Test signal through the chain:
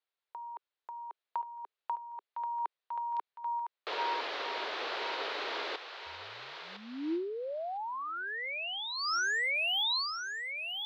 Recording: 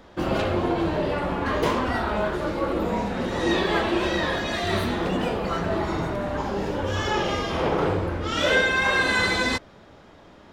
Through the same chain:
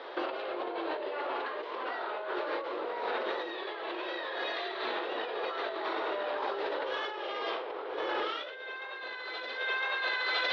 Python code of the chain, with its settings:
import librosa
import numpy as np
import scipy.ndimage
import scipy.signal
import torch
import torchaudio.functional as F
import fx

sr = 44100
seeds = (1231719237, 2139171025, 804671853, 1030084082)

y = scipy.signal.sosfilt(scipy.signal.ellip(3, 1.0, 40, [400.0, 4100.0], 'bandpass', fs=sr, output='sos'), x)
y = fx.echo_thinned(y, sr, ms=1008, feedback_pct=46, hz=800.0, wet_db=-7.5)
y = fx.over_compress(y, sr, threshold_db=-36.0, ratio=-1.0)